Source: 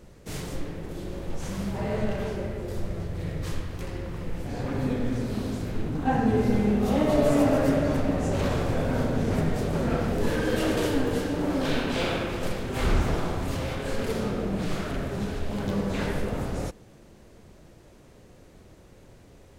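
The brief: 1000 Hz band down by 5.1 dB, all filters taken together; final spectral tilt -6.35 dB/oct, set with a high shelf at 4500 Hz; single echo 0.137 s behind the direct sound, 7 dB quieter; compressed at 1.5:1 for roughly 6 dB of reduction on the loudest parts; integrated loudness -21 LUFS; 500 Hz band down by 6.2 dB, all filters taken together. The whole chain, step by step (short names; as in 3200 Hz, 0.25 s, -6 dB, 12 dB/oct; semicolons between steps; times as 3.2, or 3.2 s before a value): bell 500 Hz -6.5 dB; bell 1000 Hz -4 dB; high shelf 4500 Hz -6 dB; compressor 1.5:1, threshold -36 dBFS; echo 0.137 s -7 dB; gain +13 dB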